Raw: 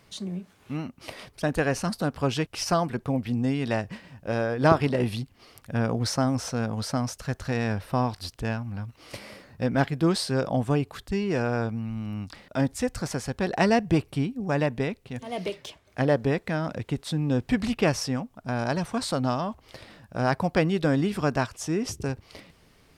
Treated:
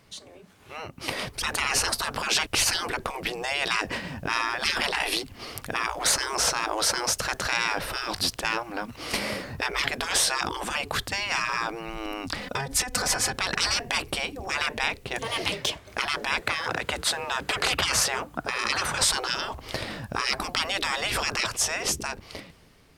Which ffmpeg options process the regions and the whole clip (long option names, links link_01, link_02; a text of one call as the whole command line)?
ffmpeg -i in.wav -filter_complex "[0:a]asettb=1/sr,asplit=3[link_01][link_02][link_03];[link_01]atrim=end=12.414[link_04];[link_02]atrim=start=12.41:end=13.36,asetpts=PTS-STARTPTS,afade=type=in:duration=0.004:curve=qsin,afade=type=out:start_time=0.946:duration=0.004:curve=qsin,bandreject=frequency=60:width_type=h:width=6,bandreject=frequency=120:width_type=h:width=6,aecho=1:1:4:0.81,atrim=end_sample=41895,acompressor=threshold=-30dB:ratio=8:attack=3.2:release=140:knee=1:detection=peak[link_05];[link_03]atrim=start=13.356[link_06];[link_04][link_05]acrossfade=duration=0.004:curve1=hsin:curve2=qsin[link_07];[link_07][link_06]acrossfade=duration=0.004:curve1=qsin:curve2=hsin,asettb=1/sr,asplit=3[link_08][link_09][link_10];[link_08]atrim=end=16.424[link_11];[link_09]atrim=start=16.42:end=18.97,asetpts=PTS-STARTPTS,afade=type=in:duration=0.004:curve=qsin,afade=type=out:start_time=2.546:duration=0.004:curve=qsin,equalizer=frequency=1400:width_type=o:width=0.59:gain=6,bandreject=frequency=5500:width=14,afreqshift=36[link_12];[link_10]atrim=start=18.966[link_13];[link_11][link_12]acrossfade=duration=0.004:curve1=hsin:curve2=qsin[link_14];[link_14][link_13]acrossfade=duration=0.004:curve1=qsin:curve2=hsin,afftfilt=real='re*lt(hypot(re,im),0.0562)':imag='im*lt(hypot(re,im),0.0562)':win_size=1024:overlap=0.75,dynaudnorm=framelen=160:gausssize=13:maxgain=14dB" out.wav